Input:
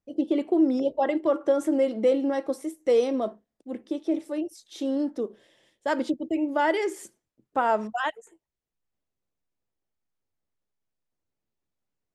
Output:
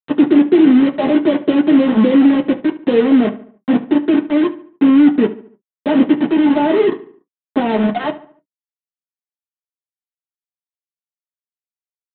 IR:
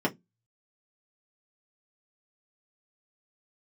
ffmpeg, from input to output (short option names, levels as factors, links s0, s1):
-filter_complex "[0:a]tiltshelf=f=630:g=9.5,acompressor=threshold=0.0355:ratio=2,aresample=8000,acrusher=bits=4:mix=0:aa=0.000001,aresample=44100,asplit=2[s0][s1];[s1]adelay=72,lowpass=f=2600:p=1,volume=0.178,asplit=2[s2][s3];[s3]adelay=72,lowpass=f=2600:p=1,volume=0.45,asplit=2[s4][s5];[s5]adelay=72,lowpass=f=2600:p=1,volume=0.45,asplit=2[s6][s7];[s7]adelay=72,lowpass=f=2600:p=1,volume=0.45[s8];[s0][s2][s4][s6][s8]amix=inputs=5:normalize=0[s9];[1:a]atrim=start_sample=2205,atrim=end_sample=3087[s10];[s9][s10]afir=irnorm=-1:irlink=0,volume=0.794"